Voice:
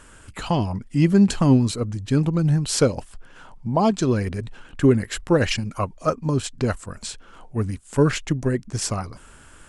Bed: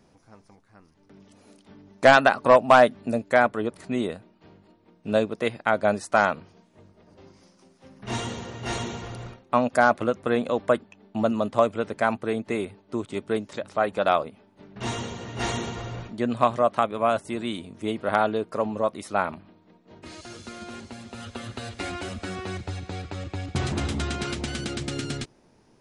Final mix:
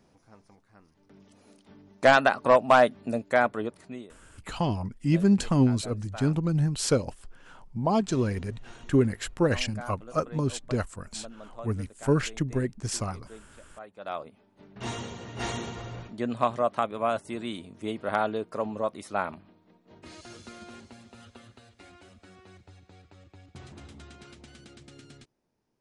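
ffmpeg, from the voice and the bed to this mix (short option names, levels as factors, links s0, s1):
-filter_complex "[0:a]adelay=4100,volume=0.531[s0];[1:a]volume=4.73,afade=t=out:st=3.59:d=0.48:silence=0.125893,afade=t=in:st=13.97:d=0.6:silence=0.141254,afade=t=out:st=20.34:d=1.31:silence=0.177828[s1];[s0][s1]amix=inputs=2:normalize=0"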